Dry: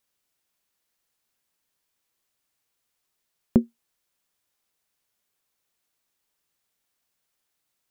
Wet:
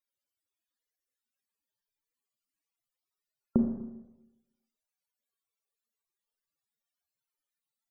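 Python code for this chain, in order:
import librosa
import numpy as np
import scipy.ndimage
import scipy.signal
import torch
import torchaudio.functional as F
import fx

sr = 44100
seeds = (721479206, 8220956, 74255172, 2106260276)

y = fx.rev_schroeder(x, sr, rt60_s=1.0, comb_ms=27, drr_db=3.0)
y = fx.spec_topn(y, sr, count=64)
y = y * 10.0 ** (-7.0 / 20.0)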